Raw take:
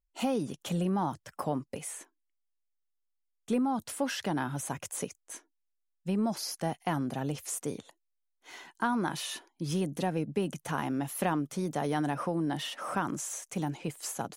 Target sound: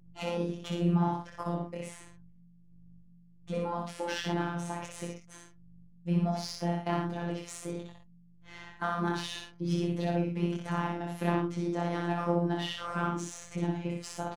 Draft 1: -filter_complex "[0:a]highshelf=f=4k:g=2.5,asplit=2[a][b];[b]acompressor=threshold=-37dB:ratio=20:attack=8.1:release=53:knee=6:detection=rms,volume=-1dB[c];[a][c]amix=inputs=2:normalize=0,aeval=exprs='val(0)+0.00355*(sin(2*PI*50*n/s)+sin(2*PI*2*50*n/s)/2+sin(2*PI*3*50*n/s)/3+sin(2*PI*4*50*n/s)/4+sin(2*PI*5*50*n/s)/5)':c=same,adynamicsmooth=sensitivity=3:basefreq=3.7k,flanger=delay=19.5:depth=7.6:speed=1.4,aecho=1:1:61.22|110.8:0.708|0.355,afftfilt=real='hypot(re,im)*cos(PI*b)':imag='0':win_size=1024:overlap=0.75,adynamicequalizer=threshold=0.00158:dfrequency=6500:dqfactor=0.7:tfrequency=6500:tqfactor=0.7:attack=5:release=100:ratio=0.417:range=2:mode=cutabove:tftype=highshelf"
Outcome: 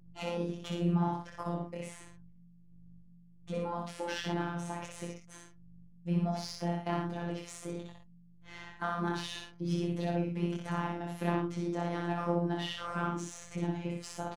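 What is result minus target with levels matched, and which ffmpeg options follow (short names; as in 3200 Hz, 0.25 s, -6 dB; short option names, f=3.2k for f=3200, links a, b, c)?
compressor: peak gain reduction +9.5 dB
-filter_complex "[0:a]highshelf=f=4k:g=2.5,asplit=2[a][b];[b]acompressor=threshold=-26.5dB:ratio=20:attack=8.1:release=53:knee=6:detection=rms,volume=-1dB[c];[a][c]amix=inputs=2:normalize=0,aeval=exprs='val(0)+0.00355*(sin(2*PI*50*n/s)+sin(2*PI*2*50*n/s)/2+sin(2*PI*3*50*n/s)/3+sin(2*PI*4*50*n/s)/4+sin(2*PI*5*50*n/s)/5)':c=same,adynamicsmooth=sensitivity=3:basefreq=3.7k,flanger=delay=19.5:depth=7.6:speed=1.4,aecho=1:1:61.22|110.8:0.708|0.355,afftfilt=real='hypot(re,im)*cos(PI*b)':imag='0':win_size=1024:overlap=0.75,adynamicequalizer=threshold=0.00158:dfrequency=6500:dqfactor=0.7:tfrequency=6500:tqfactor=0.7:attack=5:release=100:ratio=0.417:range=2:mode=cutabove:tftype=highshelf"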